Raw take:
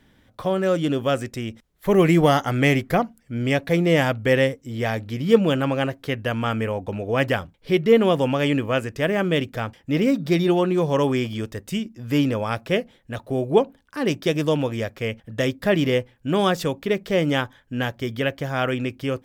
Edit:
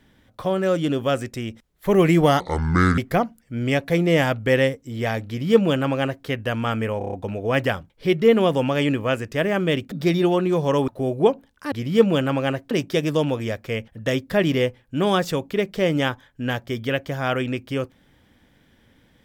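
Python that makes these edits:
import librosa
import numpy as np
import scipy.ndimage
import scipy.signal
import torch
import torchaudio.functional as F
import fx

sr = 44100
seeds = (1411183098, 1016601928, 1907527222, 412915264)

y = fx.edit(x, sr, fx.speed_span(start_s=2.4, length_s=0.37, speed=0.64),
    fx.duplicate(start_s=5.06, length_s=0.99, to_s=14.03),
    fx.stutter(start_s=6.77, slice_s=0.03, count=6),
    fx.cut(start_s=9.56, length_s=0.61),
    fx.cut(start_s=11.13, length_s=2.06), tone=tone)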